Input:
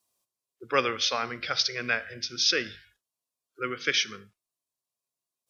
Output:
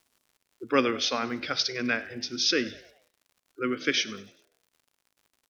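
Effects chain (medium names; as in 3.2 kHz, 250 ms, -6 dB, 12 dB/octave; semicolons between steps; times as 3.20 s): peaking EQ 270 Hz +13.5 dB 0.86 oct; crackle 110 per s -49 dBFS; on a send: frequency-shifting echo 99 ms, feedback 49%, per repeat +68 Hz, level -21 dB; on the sum: trim -1.5 dB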